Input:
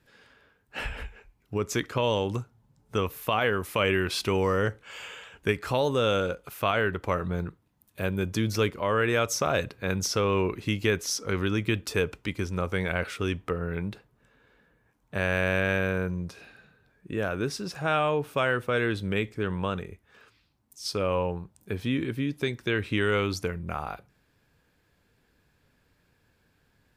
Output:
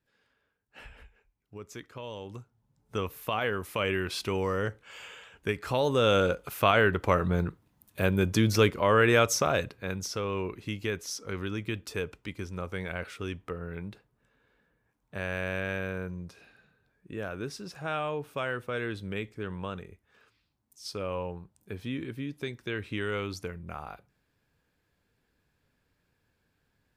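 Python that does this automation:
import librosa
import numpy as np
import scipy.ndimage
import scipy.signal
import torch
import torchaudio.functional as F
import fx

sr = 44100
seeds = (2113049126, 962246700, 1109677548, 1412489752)

y = fx.gain(x, sr, db=fx.line((2.12, -15.0), (2.98, -4.5), (5.49, -4.5), (6.26, 3.0), (9.21, 3.0), (10.02, -7.0)))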